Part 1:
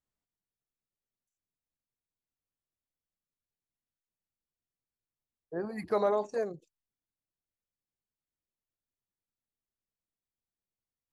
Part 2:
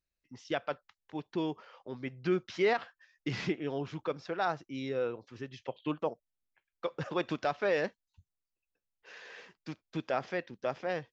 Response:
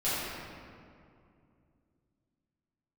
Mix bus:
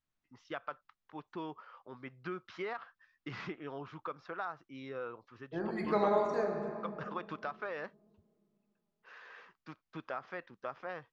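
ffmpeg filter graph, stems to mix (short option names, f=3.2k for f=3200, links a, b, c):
-filter_complex "[0:a]equalizer=f=500:t=o:w=0.64:g=-8.5,volume=-1.5dB,asplit=2[a][b];[b]volume=-9dB[c];[1:a]equalizer=f=1.2k:w=1.5:g=14,acompressor=threshold=-26dB:ratio=6,volume=-9.5dB[d];[2:a]atrim=start_sample=2205[e];[c][e]afir=irnorm=-1:irlink=0[f];[a][d][f]amix=inputs=3:normalize=0,lowpass=5k"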